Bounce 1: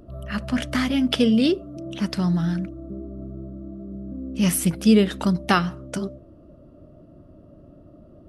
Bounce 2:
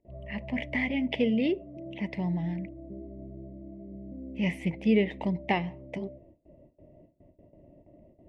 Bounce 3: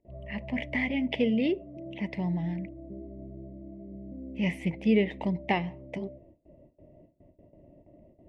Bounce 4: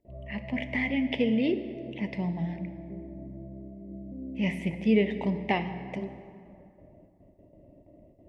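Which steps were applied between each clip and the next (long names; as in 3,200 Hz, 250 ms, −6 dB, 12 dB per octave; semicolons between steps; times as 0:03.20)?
noise gate with hold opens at −39 dBFS; drawn EQ curve 260 Hz 0 dB, 510 Hz +4 dB, 940 Hz +4 dB, 1,400 Hz −29 dB, 2,000 Hz +13 dB, 4,100 Hz −13 dB, 7,400 Hz −20 dB, 12,000 Hz −30 dB; level −8.5 dB
no processing that can be heard
dense smooth reverb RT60 2.5 s, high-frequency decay 0.6×, DRR 9 dB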